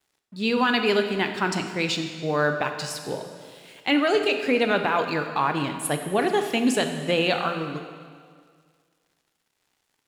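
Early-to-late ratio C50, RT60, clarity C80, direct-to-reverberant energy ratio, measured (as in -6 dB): 7.0 dB, 1.9 s, 8.5 dB, 5.5 dB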